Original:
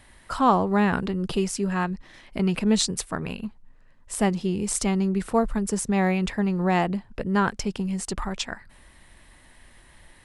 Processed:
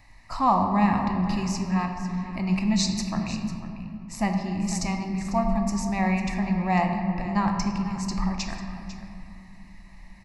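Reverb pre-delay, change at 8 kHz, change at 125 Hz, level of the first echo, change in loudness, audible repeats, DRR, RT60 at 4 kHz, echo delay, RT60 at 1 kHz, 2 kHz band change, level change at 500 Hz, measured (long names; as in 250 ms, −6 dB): 3 ms, −4.5 dB, +0.5 dB, −14.0 dB, −1.0 dB, 1, 2.5 dB, 1.4 s, 498 ms, 2.5 s, −2.5 dB, −6.5 dB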